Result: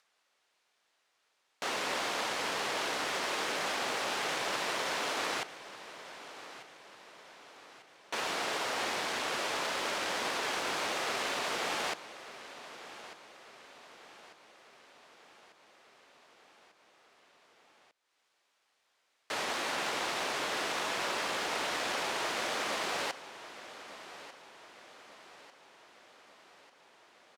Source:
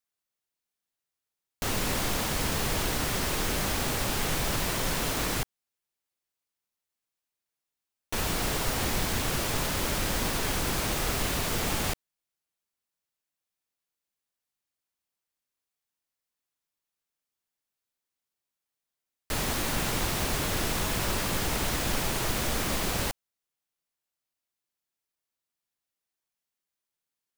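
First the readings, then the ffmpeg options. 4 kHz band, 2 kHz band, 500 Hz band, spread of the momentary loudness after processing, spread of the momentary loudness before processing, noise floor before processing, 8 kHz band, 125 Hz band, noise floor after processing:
−2.5 dB, −0.5 dB, −2.5 dB, 20 LU, 3 LU, below −85 dBFS, −8.5 dB, −22.5 dB, −76 dBFS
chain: -af "highpass=490,aecho=1:1:1195|2390|3585|4780|5975:0.188|0.0923|0.0452|0.0222|0.0109,acompressor=mode=upward:threshold=-50dB:ratio=2.5,acrusher=bits=4:mode=log:mix=0:aa=0.000001,adynamicsmooth=sensitivity=2:basefreq=4800"

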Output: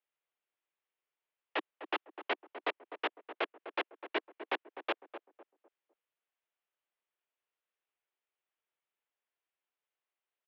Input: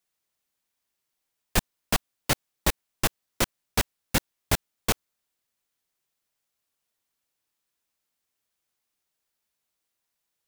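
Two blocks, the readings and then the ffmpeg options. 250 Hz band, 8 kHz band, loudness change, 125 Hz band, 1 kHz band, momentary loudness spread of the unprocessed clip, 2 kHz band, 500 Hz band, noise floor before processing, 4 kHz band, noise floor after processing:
−12.5 dB, below −40 dB, −10.0 dB, below −40 dB, −5.0 dB, 2 LU, −6.0 dB, −5.0 dB, −82 dBFS, −11.5 dB, below −85 dBFS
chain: -filter_complex "[0:a]highpass=frequency=220:width_type=q:width=0.5412,highpass=frequency=220:width_type=q:width=1.307,lowpass=frequency=3100:width_type=q:width=0.5176,lowpass=frequency=3100:width_type=q:width=0.7071,lowpass=frequency=3100:width_type=q:width=1.932,afreqshift=120,asplit=2[link_01][link_02];[link_02]adelay=252,lowpass=frequency=980:poles=1,volume=-9.5dB,asplit=2[link_03][link_04];[link_04]adelay=252,lowpass=frequency=980:poles=1,volume=0.36,asplit=2[link_05][link_06];[link_06]adelay=252,lowpass=frequency=980:poles=1,volume=0.36,asplit=2[link_07][link_08];[link_08]adelay=252,lowpass=frequency=980:poles=1,volume=0.36[link_09];[link_01][link_03][link_05][link_07][link_09]amix=inputs=5:normalize=0,volume=-6dB"

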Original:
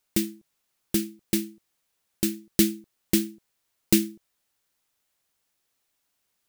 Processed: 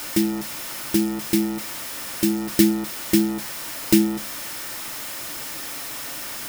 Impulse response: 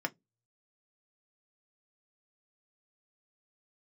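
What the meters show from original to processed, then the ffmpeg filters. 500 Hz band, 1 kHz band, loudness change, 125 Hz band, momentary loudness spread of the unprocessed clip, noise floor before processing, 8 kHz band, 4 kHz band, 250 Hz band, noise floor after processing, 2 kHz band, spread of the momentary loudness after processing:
+6.5 dB, can't be measured, +2.5 dB, +4.5 dB, 13 LU, −77 dBFS, +4.5 dB, +5.5 dB, +6.5 dB, −33 dBFS, +9.0 dB, 10 LU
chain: -filter_complex "[0:a]aeval=exprs='val(0)+0.5*0.0447*sgn(val(0))':channel_layout=same,asplit=2[link_01][link_02];[1:a]atrim=start_sample=2205,lowshelf=frequency=230:gain=6.5[link_03];[link_02][link_03]afir=irnorm=-1:irlink=0,volume=-5dB[link_04];[link_01][link_04]amix=inputs=2:normalize=0,volume=-2.5dB"

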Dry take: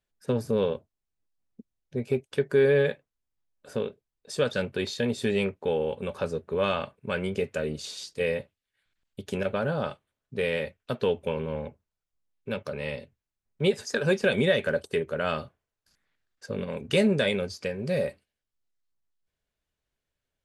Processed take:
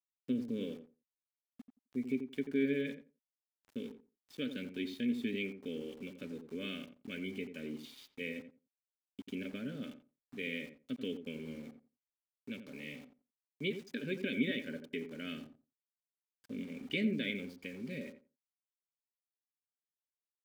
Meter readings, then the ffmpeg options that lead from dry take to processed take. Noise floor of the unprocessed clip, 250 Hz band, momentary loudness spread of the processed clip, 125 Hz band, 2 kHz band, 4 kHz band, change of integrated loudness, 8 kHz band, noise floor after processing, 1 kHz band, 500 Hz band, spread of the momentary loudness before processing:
below −85 dBFS, −5.5 dB, 15 LU, −15.5 dB, −10.5 dB, −10.0 dB, −11.5 dB, below −15 dB, below −85 dBFS, −25.5 dB, −17.0 dB, 13 LU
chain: -filter_complex "[0:a]asplit=3[link_01][link_02][link_03];[link_01]bandpass=frequency=270:width_type=q:width=8,volume=0dB[link_04];[link_02]bandpass=frequency=2290:width_type=q:width=8,volume=-6dB[link_05];[link_03]bandpass=frequency=3010:width_type=q:width=8,volume=-9dB[link_06];[link_04][link_05][link_06]amix=inputs=3:normalize=0,aeval=exprs='val(0)*gte(abs(val(0)),0.00133)':channel_layout=same,asplit=2[link_07][link_08];[link_08]adelay=87,lowpass=frequency=1000:poles=1,volume=-8dB,asplit=2[link_09][link_10];[link_10]adelay=87,lowpass=frequency=1000:poles=1,volume=0.18,asplit=2[link_11][link_12];[link_12]adelay=87,lowpass=frequency=1000:poles=1,volume=0.18[link_13];[link_07][link_09][link_11][link_13]amix=inputs=4:normalize=0,volume=2.5dB"

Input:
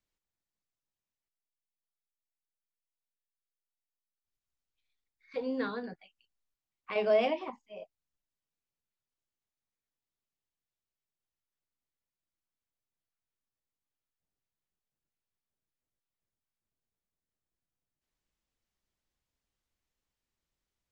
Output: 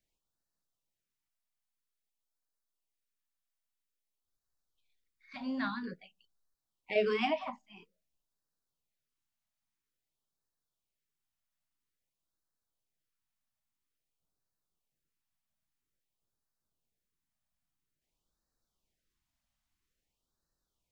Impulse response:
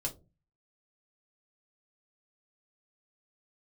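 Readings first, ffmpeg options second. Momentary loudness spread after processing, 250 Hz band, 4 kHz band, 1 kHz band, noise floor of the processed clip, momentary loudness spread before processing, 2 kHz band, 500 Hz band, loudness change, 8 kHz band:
20 LU, +0.5 dB, +2.0 dB, 0.0 dB, below −85 dBFS, 21 LU, +2.0 dB, −4.0 dB, −2.0 dB, can't be measured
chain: -filter_complex "[0:a]asplit=2[link_01][link_02];[1:a]atrim=start_sample=2205,asetrate=52920,aresample=44100[link_03];[link_02][link_03]afir=irnorm=-1:irlink=0,volume=-19.5dB[link_04];[link_01][link_04]amix=inputs=2:normalize=0,afftfilt=real='re*(1-between(b*sr/1024,380*pow(2700/380,0.5+0.5*sin(2*PI*0.5*pts/sr))/1.41,380*pow(2700/380,0.5+0.5*sin(2*PI*0.5*pts/sr))*1.41))':imag='im*(1-between(b*sr/1024,380*pow(2700/380,0.5+0.5*sin(2*PI*0.5*pts/sr))/1.41,380*pow(2700/380,0.5+0.5*sin(2*PI*0.5*pts/sr))*1.41))':win_size=1024:overlap=0.75,volume=1.5dB"

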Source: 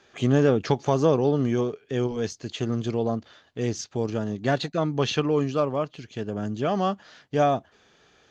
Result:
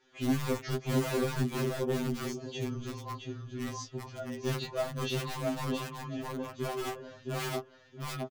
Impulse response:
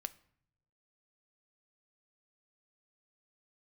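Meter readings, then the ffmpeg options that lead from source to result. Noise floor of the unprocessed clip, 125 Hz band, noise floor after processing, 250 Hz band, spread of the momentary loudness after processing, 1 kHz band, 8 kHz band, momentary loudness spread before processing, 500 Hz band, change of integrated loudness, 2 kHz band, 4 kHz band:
−61 dBFS, −7.5 dB, −58 dBFS, −8.5 dB, 10 LU, −10.5 dB, can't be measured, 10 LU, −10.5 dB, −9.5 dB, −4.5 dB, −5.0 dB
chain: -filter_complex "[0:a]flanger=delay=19:depth=2.2:speed=0.36,asplit=2[link_01][link_02];[link_02]adelay=668,lowpass=frequency=3300:poles=1,volume=-3dB,asplit=2[link_03][link_04];[link_04]adelay=668,lowpass=frequency=3300:poles=1,volume=0.19,asplit=2[link_05][link_06];[link_06]adelay=668,lowpass=frequency=3300:poles=1,volume=0.19[link_07];[link_01][link_03][link_05][link_07]amix=inputs=4:normalize=0[link_08];[1:a]atrim=start_sample=2205,atrim=end_sample=3528,asetrate=79380,aresample=44100[link_09];[link_08][link_09]afir=irnorm=-1:irlink=0,asplit=2[link_10][link_11];[link_11]aeval=exprs='(mod(25.1*val(0)+1,2)-1)/25.1':channel_layout=same,volume=-3dB[link_12];[link_10][link_12]amix=inputs=2:normalize=0,afftfilt=real='re*2.45*eq(mod(b,6),0)':imag='im*2.45*eq(mod(b,6),0)':win_size=2048:overlap=0.75"

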